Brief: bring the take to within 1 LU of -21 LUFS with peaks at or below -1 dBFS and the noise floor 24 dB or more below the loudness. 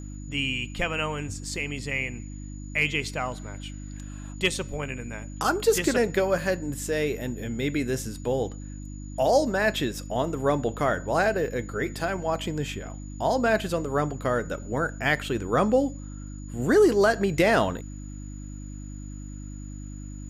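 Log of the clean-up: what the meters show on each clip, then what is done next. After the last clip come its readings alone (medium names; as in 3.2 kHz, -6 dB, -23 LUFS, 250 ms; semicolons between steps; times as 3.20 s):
hum 50 Hz; highest harmonic 300 Hz; hum level -35 dBFS; steady tone 6.9 kHz; tone level -50 dBFS; loudness -26.0 LUFS; peak level -10.0 dBFS; loudness target -21.0 LUFS
-> de-hum 50 Hz, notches 6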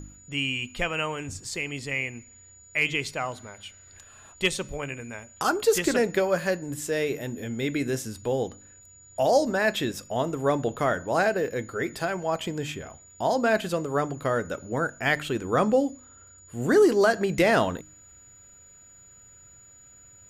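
hum not found; steady tone 6.9 kHz; tone level -50 dBFS
-> band-stop 6.9 kHz, Q 30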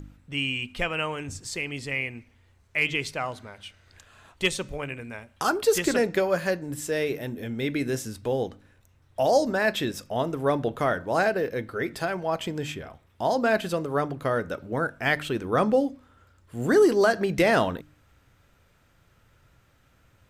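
steady tone not found; loudness -26.5 LUFS; peak level -10.5 dBFS; loudness target -21.0 LUFS
-> trim +5.5 dB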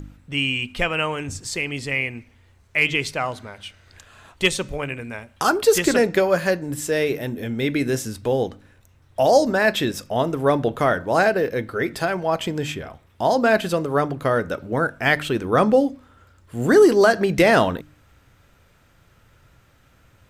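loudness -21.0 LUFS; peak level -5.0 dBFS; noise floor -57 dBFS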